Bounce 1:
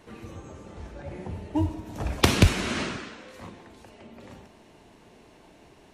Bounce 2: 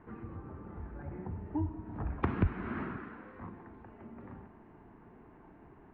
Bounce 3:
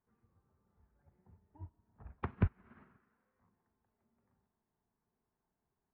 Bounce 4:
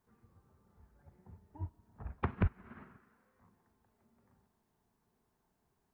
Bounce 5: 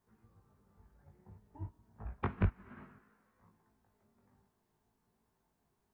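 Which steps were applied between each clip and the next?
low-pass filter 1,600 Hz 24 dB per octave; parametric band 570 Hz −10 dB 0.62 octaves; downward compressor 1.5 to 1, threshold −43 dBFS, peak gain reduction 11 dB
parametric band 310 Hz −13 dB 0.26 octaves; expander for the loud parts 2.5 to 1, over −43 dBFS
brickwall limiter −29 dBFS, peak gain reduction 10.5 dB; level +8 dB
chorus effect 0.57 Hz, delay 18 ms, depth 2.4 ms; level +2.5 dB

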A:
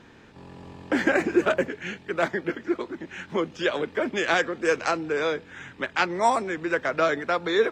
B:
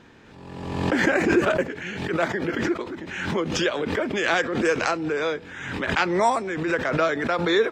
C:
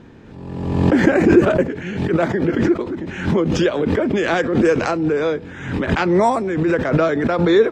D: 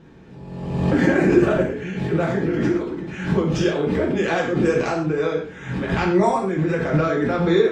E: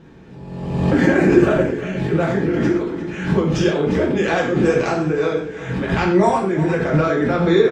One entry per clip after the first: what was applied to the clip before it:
background raised ahead of every attack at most 44 dB per second
tilt shelving filter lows +6.5 dB, about 640 Hz; level +5 dB
reverb whose tail is shaped and stops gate 170 ms falling, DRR −2.5 dB; level −7.5 dB
repeating echo 355 ms, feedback 39%, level −14.5 dB; level +2.5 dB

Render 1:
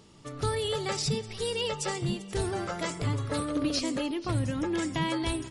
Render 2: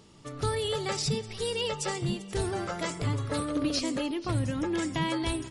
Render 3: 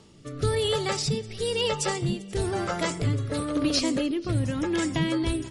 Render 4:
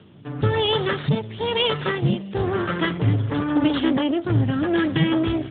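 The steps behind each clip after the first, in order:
no processing that can be heard
rotating-speaker cabinet horn 1 Hz; level +5.5 dB
lower of the sound and its delayed copy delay 0.62 ms; log-companded quantiser 6 bits; level +7 dB; AMR narrowband 12.2 kbit/s 8,000 Hz

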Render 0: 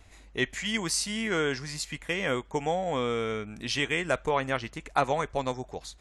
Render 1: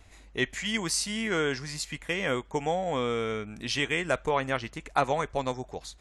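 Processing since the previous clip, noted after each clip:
no processing that can be heard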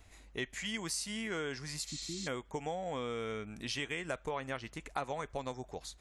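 healed spectral selection 0:01.90–0:02.25, 370–8,500 Hz before
high-shelf EQ 11,000 Hz +6.5 dB
downward compressor 2.5 to 1, threshold −32 dBFS, peak gain reduction 9 dB
level −4.5 dB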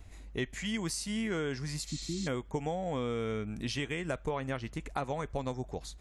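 low-shelf EQ 370 Hz +10 dB

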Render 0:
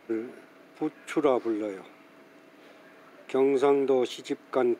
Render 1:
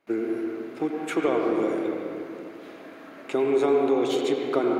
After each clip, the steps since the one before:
noise gate with hold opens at −45 dBFS
downward compressor 3 to 1, threshold −26 dBFS, peak gain reduction 7 dB
convolution reverb RT60 2.6 s, pre-delay 77 ms, DRR 0 dB
level +4 dB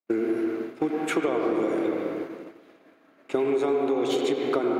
downward expander −31 dBFS
downward compressor, threshold −25 dBFS, peak gain reduction 8 dB
level +4 dB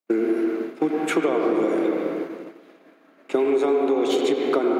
elliptic high-pass filter 160 Hz
level +4 dB

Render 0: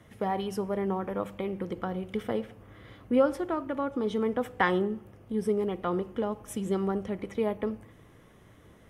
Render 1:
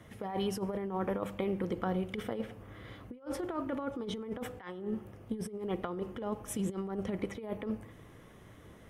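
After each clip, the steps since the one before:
compressor whose output falls as the input rises −32 dBFS, ratio −0.5
level −2.5 dB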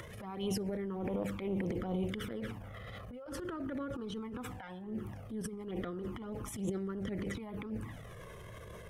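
flanger swept by the level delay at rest 2.2 ms, full sweep at −29 dBFS
transient designer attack −12 dB, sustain +8 dB
upward compression, threshold −39 dBFS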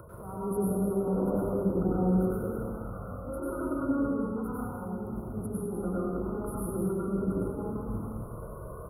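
linear-phase brick-wall band-stop 1,500–9,400 Hz
single-tap delay 200 ms −8 dB
dense smooth reverb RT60 1.3 s, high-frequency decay 0.8×, pre-delay 85 ms, DRR −7 dB

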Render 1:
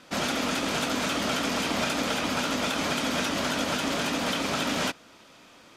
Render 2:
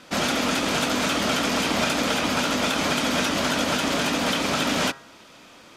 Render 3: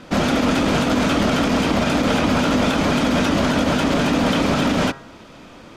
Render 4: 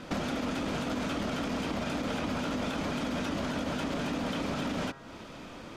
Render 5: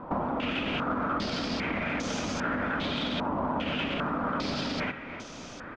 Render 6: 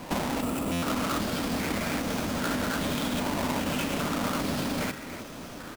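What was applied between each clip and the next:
hum removal 135.9 Hz, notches 14; level +4.5 dB
spectral tilt −2.5 dB per octave; brickwall limiter −14.5 dBFS, peak gain reduction 6 dB; level +5.5 dB
downward compressor 4 to 1, threshold −29 dBFS, peak gain reduction 12.5 dB; level −3 dB
repeating echo 313 ms, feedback 56%, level −12.5 dB; low-pass on a step sequencer 2.5 Hz 980–6,200 Hz
each half-wave held at its own peak; gain on a spectral selection 0:00.41–0:00.71, 1,400–7,100 Hz −8 dB; buffer that repeats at 0:00.72, times 8; level −3 dB

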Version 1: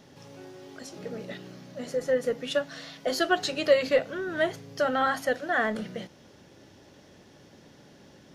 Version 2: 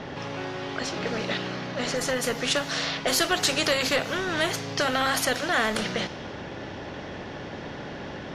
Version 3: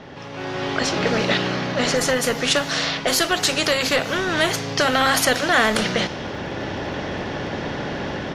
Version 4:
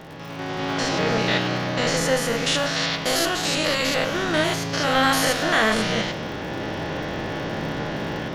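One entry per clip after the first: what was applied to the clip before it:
low-pass that shuts in the quiet parts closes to 2,500 Hz, open at −24 dBFS; in parallel at +0.5 dB: downward compressor, threshold −33 dBFS, peak gain reduction 17 dB; on the sum: every bin compressed towards the loudest bin 2 to 1
surface crackle 17 per second −51 dBFS; automatic gain control gain up to 13 dB; level −3.5 dB
spectrum averaged block by block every 100 ms; surface crackle 95 per second −35 dBFS; convolution reverb RT60 0.35 s, pre-delay 6 ms, DRR 8 dB

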